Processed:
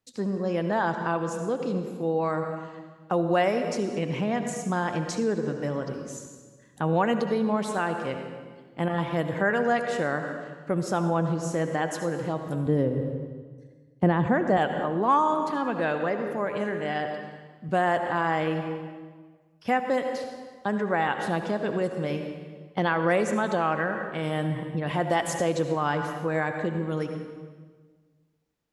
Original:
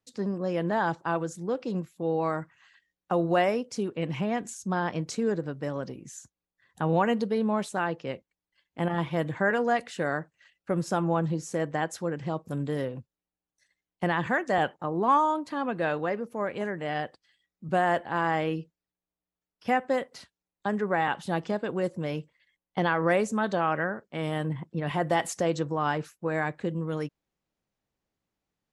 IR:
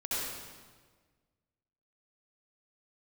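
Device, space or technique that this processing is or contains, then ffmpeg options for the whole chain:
ducked reverb: -filter_complex "[0:a]asettb=1/sr,asplit=3[s0][s1][s2];[s0]atrim=end=12.664[s3];[s1]atrim=start=12.66:end=14.57,asetpts=PTS-STARTPTS,afade=t=in:d=0.004:c=qsin,afade=t=out:st=1.906:d=0.004:c=qsin,tiltshelf=f=930:g=8.5[s4];[s2]atrim=start=14.566[s5];[s3][s4]acrossfade=d=0.004:c1=hsin:c2=qsin[s6];[s6][s5]acrossfade=d=0.004:c1=qsin:c2=hsin,asplit=3[s7][s8][s9];[1:a]atrim=start_sample=2205[s10];[s8][s10]afir=irnorm=-1:irlink=0[s11];[s9]apad=whole_len=1266799[s12];[s11][s12]sidechaincompress=threshold=0.0398:ratio=8:attack=16:release=213,volume=0.376[s13];[s7][s13]amix=inputs=2:normalize=0"

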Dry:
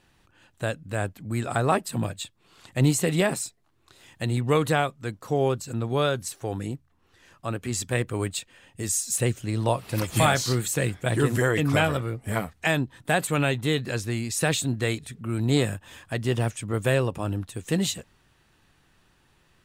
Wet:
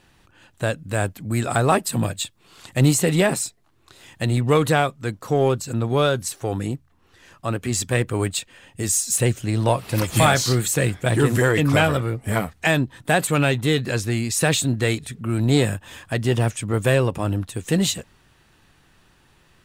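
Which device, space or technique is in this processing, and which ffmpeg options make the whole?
parallel distortion: -filter_complex "[0:a]asettb=1/sr,asplit=3[s0][s1][s2];[s0]atrim=end=0.784[s3];[s1]atrim=start=0.78:end=2.94,asetpts=PTS-STARTPTS,afade=t=in:d=0.004:c=qsin,afade=t=out:st=2.156:d=0.004:c=qsin,highshelf=f=4800:g=4.5[s4];[s2]atrim=start=2.936[s5];[s3][s4]acrossfade=d=0.004:c1=hsin:c2=qsin[s6];[s6][s5]acrossfade=d=0.004:c1=qsin:c2=hsin,asplit=2[s7][s8];[s8]asoftclip=type=hard:threshold=0.0631,volume=0.376[s9];[s7][s9]amix=inputs=2:normalize=0,volume=1.41"

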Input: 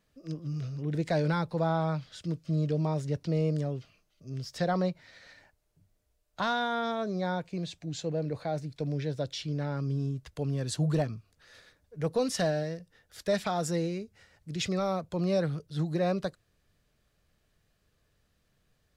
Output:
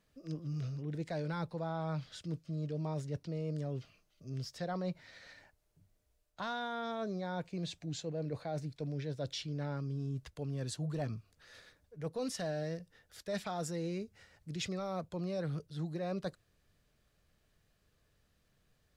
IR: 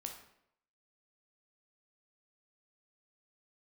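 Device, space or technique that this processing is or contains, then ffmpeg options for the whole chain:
compression on the reversed sound: -af "areverse,acompressor=threshold=0.0224:ratio=6,areverse,volume=0.841"

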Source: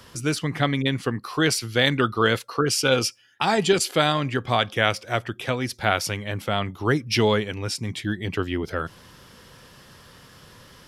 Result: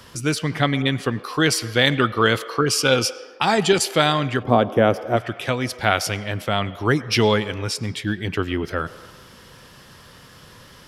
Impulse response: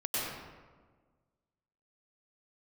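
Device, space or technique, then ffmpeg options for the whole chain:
filtered reverb send: -filter_complex "[0:a]asplit=2[s0][s1];[s1]highpass=f=370:w=0.5412,highpass=f=370:w=1.3066,lowpass=5600[s2];[1:a]atrim=start_sample=2205[s3];[s2][s3]afir=irnorm=-1:irlink=0,volume=0.0794[s4];[s0][s4]amix=inputs=2:normalize=0,asplit=3[s5][s6][s7];[s5]afade=t=out:st=4.42:d=0.02[s8];[s6]equalizer=f=250:t=o:w=1:g=10,equalizer=f=500:t=o:w=1:g=6,equalizer=f=2000:t=o:w=1:g=-8,equalizer=f=4000:t=o:w=1:g=-10,equalizer=f=8000:t=o:w=1:g=-11,afade=t=in:st=4.42:d=0.02,afade=t=out:st=5.16:d=0.02[s9];[s7]afade=t=in:st=5.16:d=0.02[s10];[s8][s9][s10]amix=inputs=3:normalize=0,volume=1.33"

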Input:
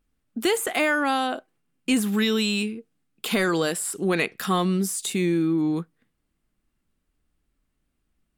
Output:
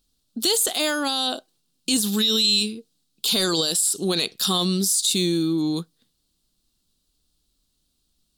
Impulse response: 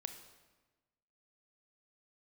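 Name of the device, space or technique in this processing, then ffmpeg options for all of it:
over-bright horn tweeter: -af "highshelf=f=2900:t=q:w=3:g=11.5,alimiter=limit=0.266:level=0:latency=1:release=20"

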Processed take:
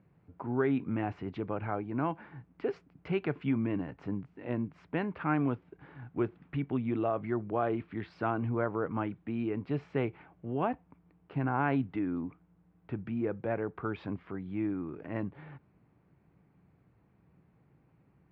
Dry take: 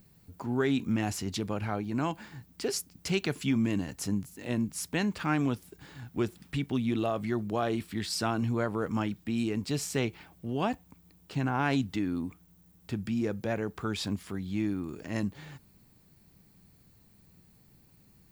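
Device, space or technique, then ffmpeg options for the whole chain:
bass cabinet: -af "highpass=83,equalizer=f=93:t=q:w=4:g=-5,equalizer=f=210:t=q:w=4:g=-7,equalizer=f=1800:t=q:w=4:g=-4,lowpass=f=2100:w=0.5412,lowpass=f=2100:w=1.3066"

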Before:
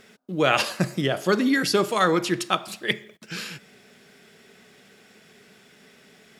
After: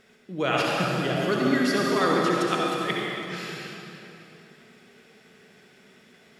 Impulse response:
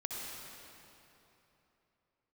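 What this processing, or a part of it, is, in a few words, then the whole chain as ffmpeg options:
swimming-pool hall: -filter_complex "[1:a]atrim=start_sample=2205[s0];[0:a][s0]afir=irnorm=-1:irlink=0,highshelf=f=5400:g=-5,volume=0.75"

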